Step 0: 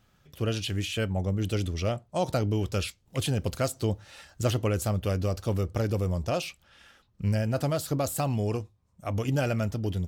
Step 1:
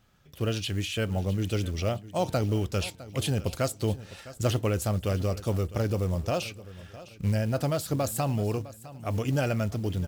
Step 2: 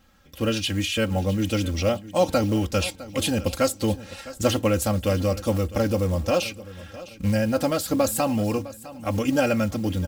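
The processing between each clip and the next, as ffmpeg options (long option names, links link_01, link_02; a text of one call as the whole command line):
ffmpeg -i in.wav -af "aecho=1:1:657|1314|1971:0.141|0.0523|0.0193,acrusher=bits=7:mode=log:mix=0:aa=0.000001" out.wav
ffmpeg -i in.wav -af "aecho=1:1:3.7:0.79,volume=4.5dB" out.wav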